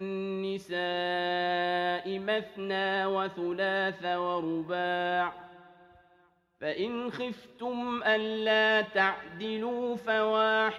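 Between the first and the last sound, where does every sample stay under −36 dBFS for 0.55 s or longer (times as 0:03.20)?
0:05.31–0:06.62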